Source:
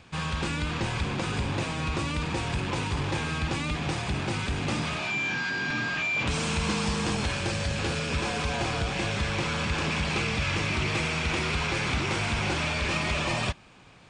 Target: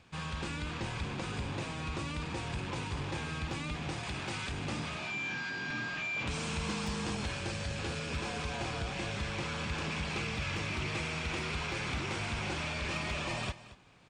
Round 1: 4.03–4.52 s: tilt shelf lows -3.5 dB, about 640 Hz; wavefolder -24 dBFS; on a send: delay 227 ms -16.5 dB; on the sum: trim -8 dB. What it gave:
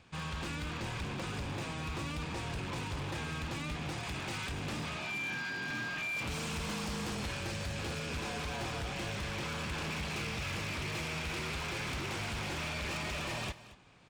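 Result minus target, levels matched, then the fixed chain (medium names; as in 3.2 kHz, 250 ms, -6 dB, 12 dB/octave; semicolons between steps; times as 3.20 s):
wavefolder: distortion +31 dB
4.03–4.52 s: tilt shelf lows -3.5 dB, about 640 Hz; wavefolder -17.5 dBFS; on a send: delay 227 ms -16.5 dB; on the sum: trim -8 dB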